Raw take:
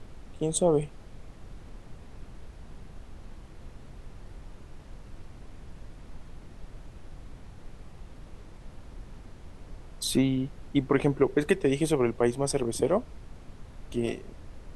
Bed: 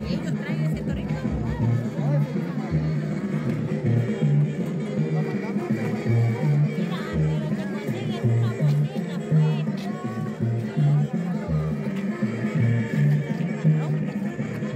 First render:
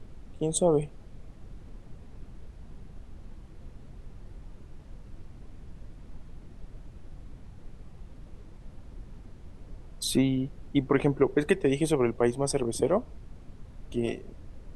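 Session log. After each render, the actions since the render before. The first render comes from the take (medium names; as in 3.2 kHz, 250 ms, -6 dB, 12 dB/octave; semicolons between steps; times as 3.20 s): noise reduction 6 dB, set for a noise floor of -48 dBFS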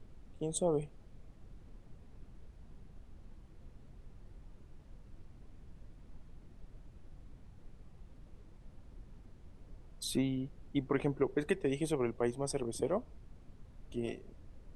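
trim -8.5 dB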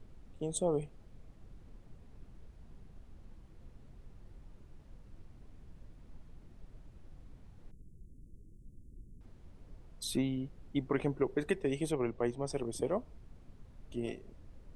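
7.71–9.21 s: inverse Chebyshev band-stop 1.1–2.7 kHz, stop band 70 dB; 11.91–12.53 s: distance through air 58 m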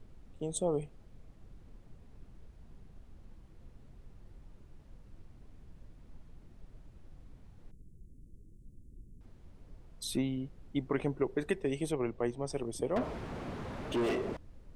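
12.96–14.37 s: overdrive pedal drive 37 dB, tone 1.4 kHz, clips at -23 dBFS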